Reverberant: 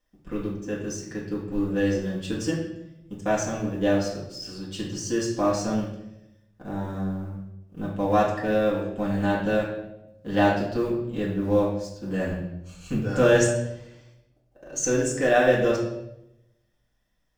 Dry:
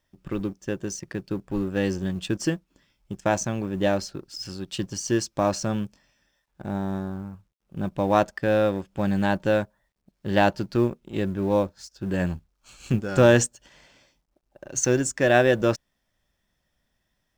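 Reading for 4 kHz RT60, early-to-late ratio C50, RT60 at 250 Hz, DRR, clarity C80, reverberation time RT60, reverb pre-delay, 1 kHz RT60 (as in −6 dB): 0.70 s, 4.0 dB, 1.1 s, −6.5 dB, 7.0 dB, 0.90 s, 4 ms, 0.75 s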